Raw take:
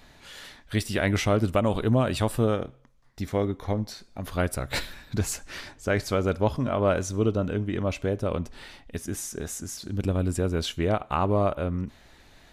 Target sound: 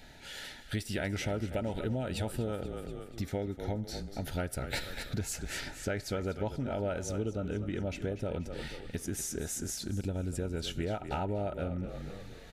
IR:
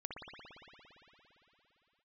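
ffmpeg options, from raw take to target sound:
-filter_complex "[0:a]asuperstop=centerf=1100:order=20:qfactor=3.9,asplit=6[a][b][c][d][e][f];[b]adelay=241,afreqshift=-35,volume=-13dB[g];[c]adelay=482,afreqshift=-70,volume=-19.6dB[h];[d]adelay=723,afreqshift=-105,volume=-26.1dB[i];[e]adelay=964,afreqshift=-140,volume=-32.7dB[j];[f]adelay=1205,afreqshift=-175,volume=-39.2dB[k];[a][g][h][i][j][k]amix=inputs=6:normalize=0,acompressor=threshold=-32dB:ratio=4"

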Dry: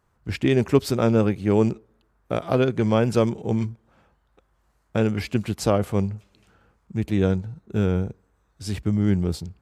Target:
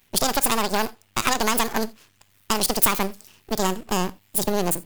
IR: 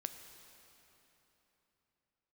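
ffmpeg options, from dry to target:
-filter_complex "[0:a]acompressor=threshold=-20dB:ratio=6,asetrate=87318,aresample=44100,aeval=exprs='max(val(0),0)':c=same,crystalizer=i=5.5:c=0,asplit=2[a][b];[1:a]atrim=start_sample=2205,atrim=end_sample=3969[c];[b][c]afir=irnorm=-1:irlink=0,volume=5.5dB[d];[a][d]amix=inputs=2:normalize=0,volume=-4dB"

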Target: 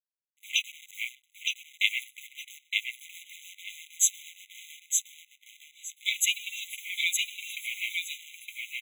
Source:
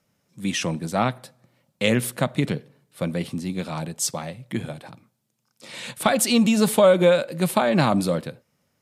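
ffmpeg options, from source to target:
-filter_complex "[0:a]afwtdn=0.0224,aecho=1:1:6.6:0.5,acontrast=41,asplit=2[a][b];[b]aecho=0:1:86:0.0841[c];[a][c]amix=inputs=2:normalize=0,acrossover=split=800[d][e];[d]aeval=exprs='val(0)*(1-1/2+1/2*cos(2*PI*6.3*n/s))':c=same[f];[e]aeval=exprs='val(0)*(1-1/2-1/2*cos(2*PI*6.3*n/s))':c=same[g];[f][g]amix=inputs=2:normalize=0,acrusher=bits=7:dc=4:mix=0:aa=0.000001,asplit=2[h][i];[i]aecho=0:1:915|1830|2745:0.668|0.127|0.0241[j];[h][j]amix=inputs=2:normalize=0,afftfilt=real='re*eq(mod(floor(b*sr/1024/2000),2),1)':imag='im*eq(mod(floor(b*sr/1024/2000),2),1)':win_size=1024:overlap=0.75"

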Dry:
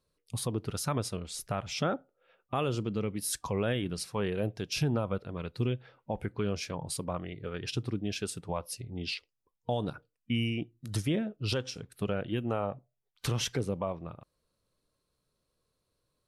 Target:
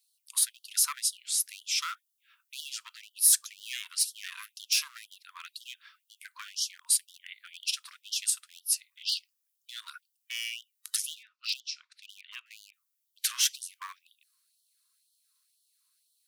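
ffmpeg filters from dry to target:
-filter_complex "[0:a]asplit=3[a][b][c];[a]afade=t=out:st=11.13:d=0.02[d];[b]highpass=f=120:w=0.5412,highpass=f=120:w=1.3066,equalizer=f=130:t=q:w=4:g=9,equalizer=f=1.6k:t=q:w=4:g=-7,equalizer=f=3.2k:t=q:w=4:g=-7,lowpass=f=5k:w=0.5412,lowpass=f=5k:w=1.3066,afade=t=in:st=11.13:d=0.02,afade=t=out:st=12.72:d=0.02[e];[c]afade=t=in:st=12.72:d=0.02[f];[d][e][f]amix=inputs=3:normalize=0,aeval=exprs='clip(val(0),-1,0.0422)':c=same,crystalizer=i=3.5:c=0,afftfilt=real='re*gte(b*sr/1024,910*pow(2900/910,0.5+0.5*sin(2*PI*2*pts/sr)))':imag='im*gte(b*sr/1024,910*pow(2900/910,0.5+0.5*sin(2*PI*2*pts/sr)))':win_size=1024:overlap=0.75"

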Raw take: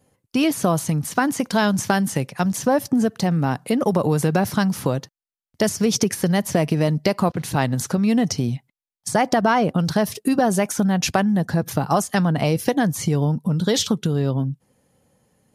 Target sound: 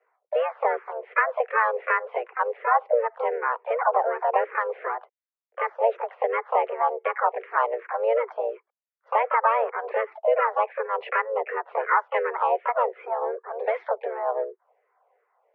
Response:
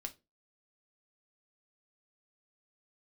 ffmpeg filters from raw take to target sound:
-filter_complex "[0:a]asplit=3[a][b][c];[b]asetrate=55563,aresample=44100,atempo=0.793701,volume=-16dB[d];[c]asetrate=66075,aresample=44100,atempo=0.66742,volume=-5dB[e];[a][d][e]amix=inputs=3:normalize=0,highpass=f=270:t=q:w=0.5412,highpass=f=270:t=q:w=1.307,lowpass=f=2k:t=q:w=0.5176,lowpass=f=2k:t=q:w=0.7071,lowpass=f=2k:t=q:w=1.932,afreqshift=230,asplit=2[f][g];[g]afreqshift=-2.7[h];[f][h]amix=inputs=2:normalize=1"

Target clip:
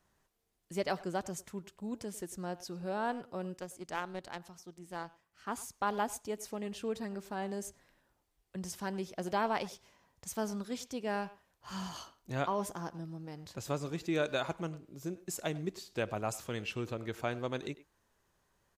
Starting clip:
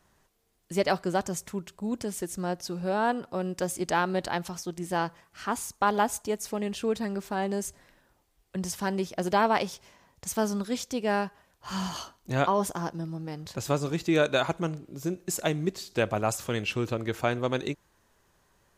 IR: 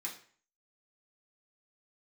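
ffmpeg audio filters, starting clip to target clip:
-filter_complex "[0:a]asplit=2[a][b];[b]adelay=100,highpass=300,lowpass=3.4k,asoftclip=type=hard:threshold=-22dB,volume=-16dB[c];[a][c]amix=inputs=2:normalize=0,asettb=1/sr,asplit=3[d][e][f];[d]atrim=end=3.574[g];[e]atrim=start=3.57:end=5.47,asetpts=PTS-STARTPTS,afade=t=in:d=0.004:c=qsin,afade=t=out:st=1.896:d=0.004:c=qsin,aeval=exprs='0.224*(cos(1*acos(clip(val(0)/0.224,-1,1)))-cos(1*PI/2))+0.0447*(cos(3*acos(clip(val(0)/0.224,-1,1)))-cos(3*PI/2))':c=same[h];[f]atrim=start=5.466[i];[g][h]acrossfade=d=0.004:c1=hsin:c2=qsin[j];[j][i]acrossfade=d=0.004:c1=qsin:c2=hsin,volume=-8.5dB"

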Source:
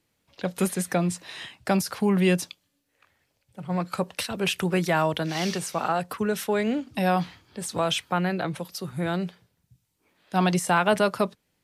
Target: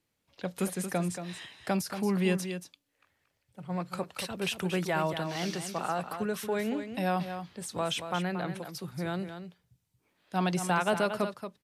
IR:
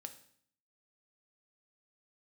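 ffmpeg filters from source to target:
-af "aecho=1:1:229:0.355,volume=-6.5dB"

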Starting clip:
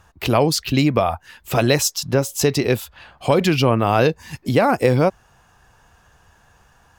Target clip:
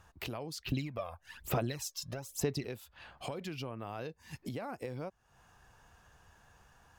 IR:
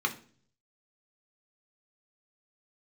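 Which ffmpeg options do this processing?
-filter_complex "[0:a]acompressor=threshold=-32dB:ratio=5,asettb=1/sr,asplit=3[a][b][c];[a]atrim=end=0.654[d];[b]atrim=start=0.65:end=2.66,asetpts=PTS-STARTPTS,afade=t=in:d=0.004:c=qsin,afade=t=out:st=2.006:d=0.004:c=qsin,aphaser=in_gain=1:out_gain=1:delay=1.9:decay=0.66:speed=1.1:type=sinusoidal[e];[c]atrim=start=2.656[f];[d][e]acrossfade=d=0.004:c1=hsin:c2=qsin[g];[g][f]acrossfade=d=0.004:c1=qsin:c2=hsin,volume=-8dB"

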